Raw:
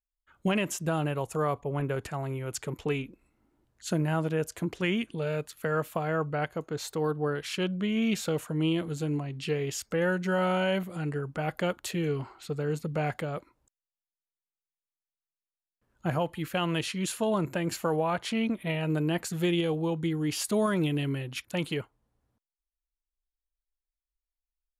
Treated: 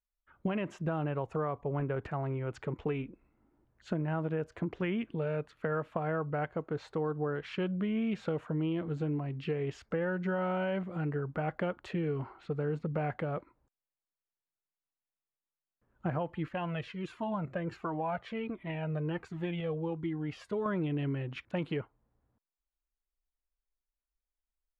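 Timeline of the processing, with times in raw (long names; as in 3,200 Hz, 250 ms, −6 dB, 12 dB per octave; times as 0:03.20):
0:16.49–0:20.66: flanger whose copies keep moving one way falling 1.4 Hz
whole clip: low-pass filter 1,900 Hz 12 dB per octave; downward compressor, threshold −29 dBFS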